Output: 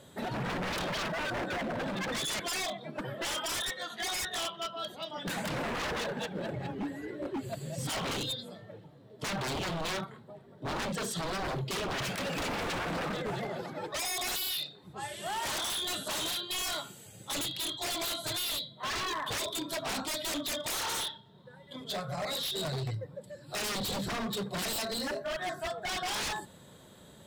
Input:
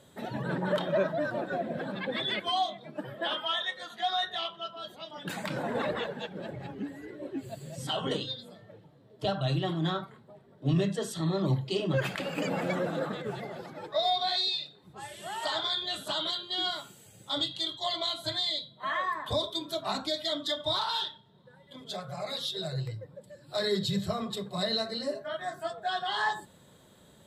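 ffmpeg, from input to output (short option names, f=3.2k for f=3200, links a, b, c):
-af "aeval=exprs='0.0237*(abs(mod(val(0)/0.0237+3,4)-2)-1)':c=same,volume=3.5dB"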